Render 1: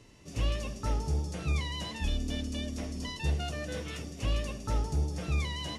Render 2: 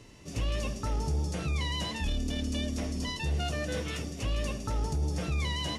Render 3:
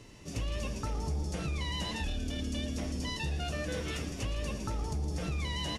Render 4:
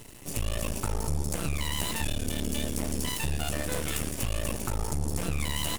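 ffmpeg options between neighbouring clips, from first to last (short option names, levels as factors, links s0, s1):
-af "alimiter=level_in=1.41:limit=0.0631:level=0:latency=1:release=24,volume=0.708,volume=1.58"
-filter_complex "[0:a]acompressor=threshold=0.0282:ratio=6,asplit=2[s0][s1];[s1]asplit=7[s2][s3][s4][s5][s6][s7][s8];[s2]adelay=117,afreqshift=-130,volume=0.251[s9];[s3]adelay=234,afreqshift=-260,volume=0.148[s10];[s4]adelay=351,afreqshift=-390,volume=0.0871[s11];[s5]adelay=468,afreqshift=-520,volume=0.0519[s12];[s6]adelay=585,afreqshift=-650,volume=0.0305[s13];[s7]adelay=702,afreqshift=-780,volume=0.018[s14];[s8]adelay=819,afreqshift=-910,volume=0.0106[s15];[s9][s10][s11][s12][s13][s14][s15]amix=inputs=7:normalize=0[s16];[s0][s16]amix=inputs=2:normalize=0"
-af "aeval=exprs='max(val(0),0)':c=same,aexciter=amount=3.1:drive=8.5:freq=7800,volume=2.37"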